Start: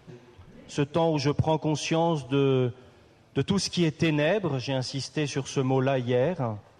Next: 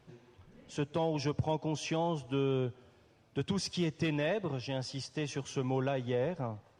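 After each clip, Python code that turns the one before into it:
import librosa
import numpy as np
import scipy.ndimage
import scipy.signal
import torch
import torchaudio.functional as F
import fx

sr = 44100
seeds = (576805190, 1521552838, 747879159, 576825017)

y = fx.wow_flutter(x, sr, seeds[0], rate_hz=2.1, depth_cents=23.0)
y = F.gain(torch.from_numpy(y), -8.0).numpy()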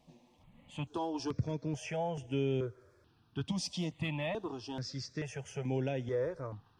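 y = fx.phaser_held(x, sr, hz=2.3, low_hz=400.0, high_hz=4200.0)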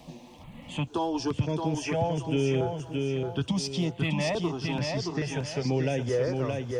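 y = fx.echo_feedback(x, sr, ms=622, feedback_pct=34, wet_db=-5)
y = fx.band_squash(y, sr, depth_pct=40)
y = F.gain(torch.from_numpy(y), 7.0).numpy()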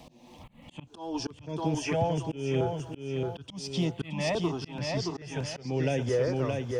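y = fx.auto_swell(x, sr, attack_ms=269.0)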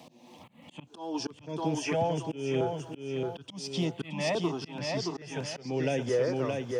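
y = scipy.signal.sosfilt(scipy.signal.butter(2, 160.0, 'highpass', fs=sr, output='sos'), x)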